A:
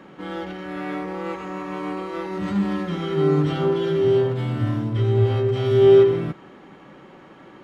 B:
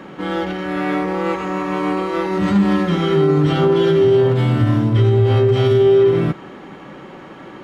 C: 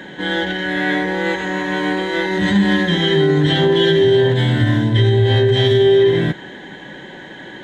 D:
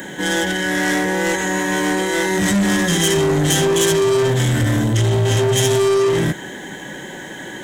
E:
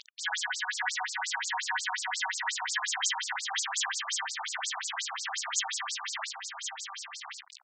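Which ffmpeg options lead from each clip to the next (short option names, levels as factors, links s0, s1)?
-af "alimiter=limit=0.168:level=0:latency=1:release=82,volume=2.82"
-af "superequalizer=10b=0.282:11b=3.16:13b=3.55:15b=2"
-af "asoftclip=type=tanh:threshold=0.158,aexciter=amount=10.7:drive=2.5:freq=6000,volume=1.41"
-af "acrusher=bits=3:mix=0:aa=0.000001,aecho=1:1:1084:0.501,afftfilt=real='re*between(b*sr/1024,910*pow(6200/910,0.5+0.5*sin(2*PI*5.6*pts/sr))/1.41,910*pow(6200/910,0.5+0.5*sin(2*PI*5.6*pts/sr))*1.41)':imag='im*between(b*sr/1024,910*pow(6200/910,0.5+0.5*sin(2*PI*5.6*pts/sr))/1.41,910*pow(6200/910,0.5+0.5*sin(2*PI*5.6*pts/sr))*1.41)':win_size=1024:overlap=0.75,volume=0.562"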